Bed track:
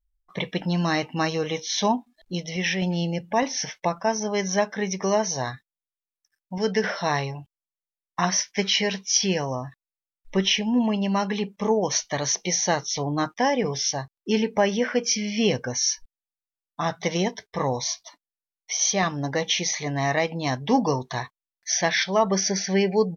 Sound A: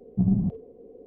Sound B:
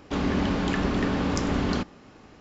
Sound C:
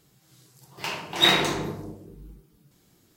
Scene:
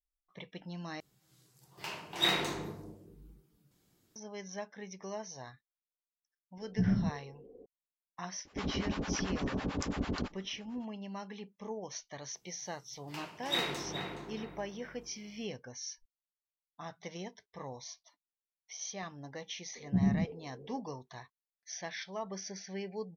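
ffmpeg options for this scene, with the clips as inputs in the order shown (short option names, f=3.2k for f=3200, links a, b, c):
-filter_complex "[3:a]asplit=2[a][b];[1:a]asplit=2[c][d];[0:a]volume=-19dB[e];[2:a]acrossover=split=650[f][g];[f]aeval=exprs='val(0)*(1-1/2+1/2*cos(2*PI*9*n/s))':c=same[h];[g]aeval=exprs='val(0)*(1-1/2-1/2*cos(2*PI*9*n/s))':c=same[i];[h][i]amix=inputs=2:normalize=0[j];[b]asplit=2[k][l];[l]adelay=420,lowpass=f=1.8k:p=1,volume=-4dB,asplit=2[m][n];[n]adelay=420,lowpass=f=1.8k:p=1,volume=0.37,asplit=2[o][p];[p]adelay=420,lowpass=f=1.8k:p=1,volume=0.37,asplit=2[q][r];[r]adelay=420,lowpass=f=1.8k:p=1,volume=0.37,asplit=2[s][t];[t]adelay=420,lowpass=f=1.8k:p=1,volume=0.37[u];[k][m][o][q][s][u]amix=inputs=6:normalize=0[v];[d]lowshelf=f=62:g=-10.5[w];[e]asplit=2[x][y];[x]atrim=end=1.004[z];[a]atrim=end=3.16,asetpts=PTS-STARTPTS,volume=-10dB[aa];[y]atrim=start=4.156[ab];[c]atrim=end=1.06,asetpts=PTS-STARTPTS,volume=-7dB,afade=t=in:d=0.004:c=hsin,afade=t=out:st=1.056:d=0.004:c=hsin,adelay=6600[ac];[j]atrim=end=2.4,asetpts=PTS-STARTPTS,volume=-5.5dB,afade=t=in:d=0.004:c=hsin,afade=t=out:st=2.396:d=0.004:c=hsin,adelay=8450[ad];[v]atrim=end=3.16,asetpts=PTS-STARTPTS,volume=-14dB,afade=t=in:d=0.004:c=hsin,afade=t=out:st=3.156:d=0.004:c=hsin,adelay=12300[ae];[w]atrim=end=1.06,asetpts=PTS-STARTPTS,volume=-5dB,afade=t=in:d=0.004:c=hsin,afade=t=out:st=1.056:d=0.004:c=hsin,adelay=19750[af];[z][aa]acrossfade=d=0.004:c1=hsin:c2=hsin[ag];[ag][ab]acrossfade=d=0.004:c1=hsin:c2=hsin[ah];[ah][ac][ad][ae][af]amix=inputs=5:normalize=0"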